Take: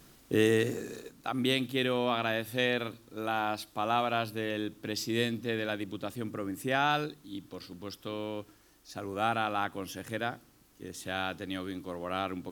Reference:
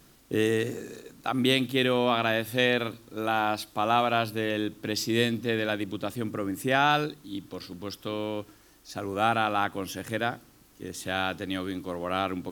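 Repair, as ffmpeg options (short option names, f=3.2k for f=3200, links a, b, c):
-af "asetnsamples=n=441:p=0,asendcmd='1.09 volume volume 5dB',volume=0dB"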